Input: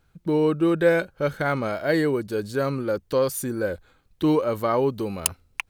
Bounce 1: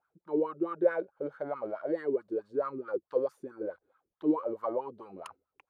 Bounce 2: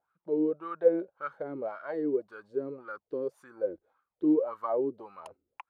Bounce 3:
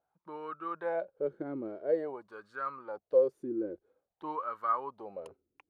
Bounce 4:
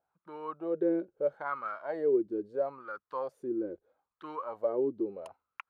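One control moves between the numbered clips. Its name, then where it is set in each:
wah, rate: 4.6, 1.8, 0.49, 0.76 Hz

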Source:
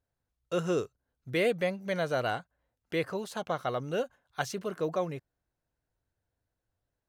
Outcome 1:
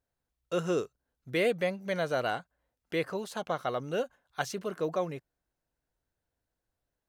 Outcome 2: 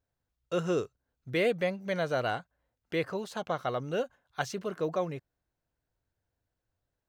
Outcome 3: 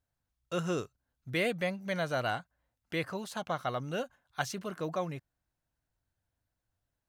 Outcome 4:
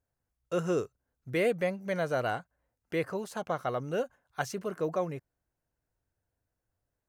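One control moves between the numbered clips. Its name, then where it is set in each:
bell, frequency: 100, 11000, 440, 3600 Hz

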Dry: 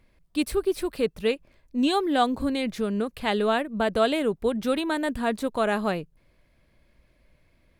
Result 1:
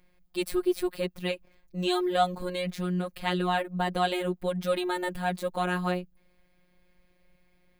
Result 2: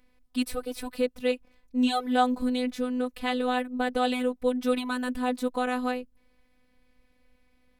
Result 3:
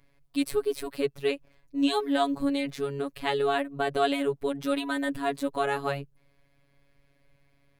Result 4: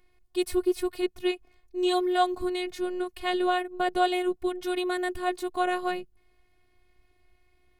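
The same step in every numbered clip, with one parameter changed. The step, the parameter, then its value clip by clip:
robotiser, frequency: 180, 250, 140, 360 Hz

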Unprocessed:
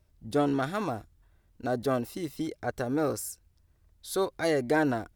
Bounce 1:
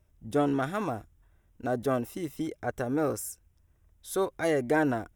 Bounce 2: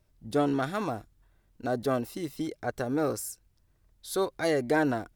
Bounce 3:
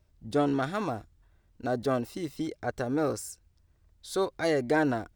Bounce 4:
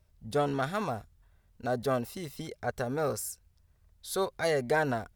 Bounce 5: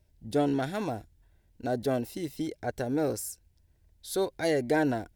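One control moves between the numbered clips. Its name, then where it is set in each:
bell, frequency: 4400, 71, 12000, 310, 1200 Hz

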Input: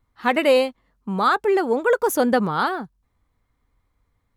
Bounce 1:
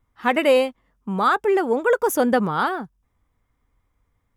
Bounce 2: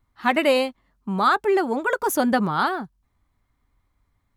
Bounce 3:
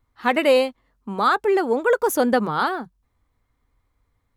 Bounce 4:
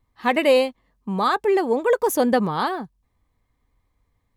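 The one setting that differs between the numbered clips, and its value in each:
notch, frequency: 4200, 480, 180, 1400 Hz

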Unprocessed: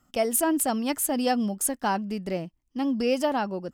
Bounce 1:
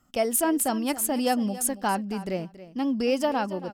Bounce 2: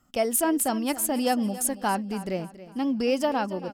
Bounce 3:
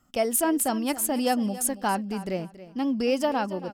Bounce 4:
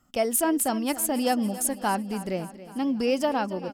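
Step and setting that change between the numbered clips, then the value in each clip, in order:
feedback echo, feedback: 15, 41, 25, 60%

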